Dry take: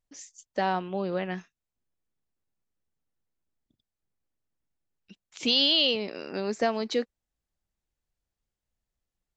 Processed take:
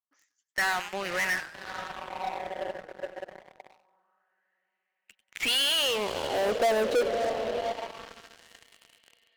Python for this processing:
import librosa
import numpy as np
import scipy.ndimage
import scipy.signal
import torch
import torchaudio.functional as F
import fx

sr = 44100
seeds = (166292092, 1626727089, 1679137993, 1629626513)

p1 = fx.echo_diffused(x, sr, ms=582, feedback_pct=64, wet_db=-15)
p2 = fx.wah_lfo(p1, sr, hz=0.25, low_hz=540.0, high_hz=2200.0, q=4.1)
p3 = fx.fuzz(p2, sr, gain_db=51.0, gate_db=-58.0)
p4 = p2 + (p3 * librosa.db_to_amplitude(-11.5))
p5 = fx.echo_warbled(p4, sr, ms=97, feedback_pct=38, rate_hz=2.8, cents=200, wet_db=-15.0)
y = p5 * librosa.db_to_amplitude(-1.0)